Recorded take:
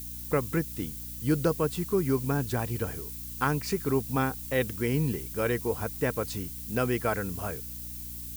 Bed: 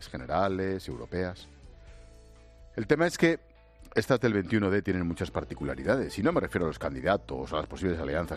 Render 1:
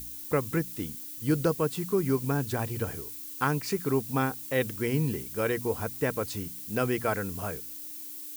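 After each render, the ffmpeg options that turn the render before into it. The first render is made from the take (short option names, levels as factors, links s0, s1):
-af "bandreject=f=60:t=h:w=4,bandreject=f=120:t=h:w=4,bandreject=f=180:t=h:w=4,bandreject=f=240:t=h:w=4"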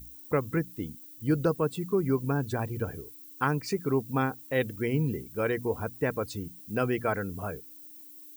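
-af "afftdn=nr=13:nf=-41"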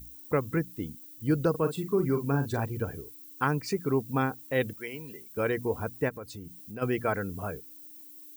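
-filter_complex "[0:a]asettb=1/sr,asplit=3[s0][s1][s2];[s0]atrim=end=1.504[s3];[s1]atrim=start=1.5:end=2.65,asetpts=PTS-STARTPTS,afade=t=in:d=0.004:c=qsin,afade=t=out:st=1.146:d=0.004:c=qsin,asplit=2[s4][s5];[s5]adelay=43,volume=0.376[s6];[s4][s6]amix=inputs=2:normalize=0,atrim=end_sample=50715[s7];[s2]atrim=start=2.646[s8];[s3][s7]acrossfade=d=0.004:c1=hsin:c2=qsin[s9];[s9][s8]acrossfade=d=0.004:c1=qsin:c2=hsin,asettb=1/sr,asplit=3[s10][s11][s12];[s10]atrim=end=4.734[s13];[s11]atrim=start=4.73:end=5.37,asetpts=PTS-STARTPTS,afade=t=in:d=0.004:c=qsin,afade=t=out:st=0.636:d=0.004:c=qsin,highpass=f=1300:p=1[s14];[s12]atrim=start=5.366[s15];[s13][s14]acrossfade=d=0.004:c1=hsin:c2=qsin[s16];[s16][s15]acrossfade=d=0.004:c1=qsin:c2=hsin,asplit=3[s17][s18][s19];[s17]afade=t=out:st=6.08:d=0.02[s20];[s18]acompressor=threshold=0.00891:ratio=2.5:attack=3.2:release=140:knee=1:detection=peak,afade=t=in:st=6.08:d=0.02,afade=t=out:st=6.81:d=0.02[s21];[s19]afade=t=in:st=6.81:d=0.02[s22];[s20][s21][s22]amix=inputs=3:normalize=0"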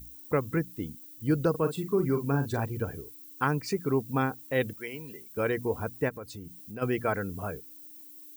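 -af anull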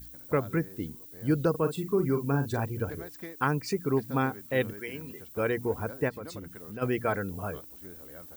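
-filter_complex "[1:a]volume=0.106[s0];[0:a][s0]amix=inputs=2:normalize=0"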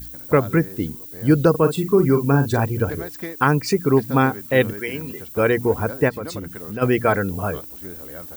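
-af "volume=3.35,alimiter=limit=0.708:level=0:latency=1"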